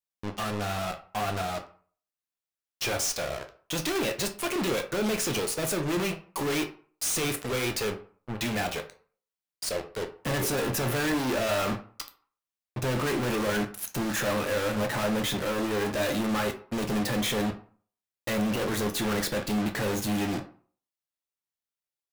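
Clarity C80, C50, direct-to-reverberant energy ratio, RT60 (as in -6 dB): 17.5 dB, 12.0 dB, 5.0 dB, 0.45 s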